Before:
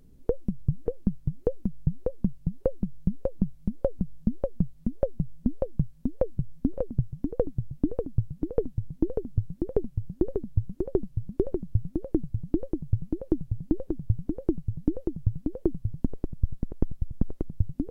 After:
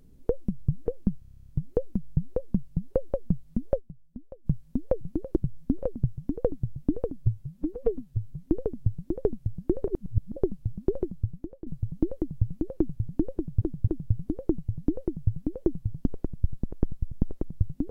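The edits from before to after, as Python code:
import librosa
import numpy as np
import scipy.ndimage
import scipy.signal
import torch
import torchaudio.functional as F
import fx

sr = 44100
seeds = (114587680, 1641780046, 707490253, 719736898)

y = fx.edit(x, sr, fx.stutter(start_s=1.19, slice_s=0.03, count=11),
    fx.cut(start_s=2.8, length_s=1.6),
    fx.fade_down_up(start_s=5.08, length_s=0.69, db=-16.0, fade_s=0.13, curve='exp'),
    fx.stretch_span(start_s=8.11, length_s=0.87, factor=1.5),
    fx.reverse_span(start_s=10.39, length_s=0.49),
    fx.fade_out_to(start_s=11.54, length_s=0.64, floor_db=-18.5),
    fx.duplicate(start_s=12.98, length_s=0.35, to_s=6.31),
    fx.repeat(start_s=13.87, length_s=0.26, count=3), tone=tone)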